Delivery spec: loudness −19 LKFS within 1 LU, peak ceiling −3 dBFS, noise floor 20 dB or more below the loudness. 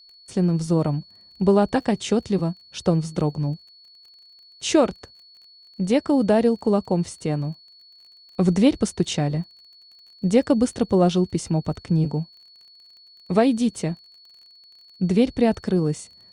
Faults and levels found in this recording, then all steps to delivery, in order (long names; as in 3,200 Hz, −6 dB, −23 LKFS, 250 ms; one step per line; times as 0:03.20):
crackle rate 28 per second; interfering tone 4,400 Hz; level of the tone −48 dBFS; integrated loudness −22.5 LKFS; sample peak −5.5 dBFS; target loudness −19.0 LKFS
→ click removal
notch filter 4,400 Hz, Q 30
level +3.5 dB
brickwall limiter −3 dBFS